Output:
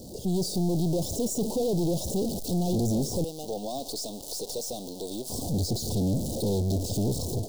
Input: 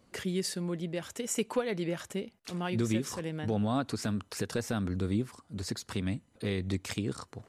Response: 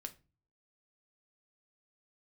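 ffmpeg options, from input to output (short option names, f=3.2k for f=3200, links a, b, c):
-filter_complex "[0:a]aeval=exprs='val(0)+0.5*0.0141*sgn(val(0))':c=same,deesser=0.95,asettb=1/sr,asplit=3[a][b][c];[a]atrim=end=3.244[d];[b]atrim=start=3.24:end=5.3,asetpts=PTS-STARTPTS,afade=t=in:d=0.004:c=qsin,afade=t=out:st=2.056:d=0.004:c=qsin,highpass=840[e];[c]atrim=start=5.296[f];[d][e]acrossfade=d=0.004:c1=hsin:c2=qsin[g];[g][f]acrossfade=d=0.004:c1=qsin:c2=hsin,dynaudnorm=f=200:g=3:m=14dB,aeval=exprs='0.237*(cos(1*acos(clip(val(0)/0.237,-1,1)))-cos(1*PI/2))+0.0237*(cos(6*acos(clip(val(0)/0.237,-1,1)))-cos(6*PI/2))+0.0376*(cos(8*acos(clip(val(0)/0.237,-1,1)))-cos(8*PI/2))':c=same,asoftclip=type=tanh:threshold=-23.5dB,asuperstop=centerf=1700:order=8:qfactor=0.51"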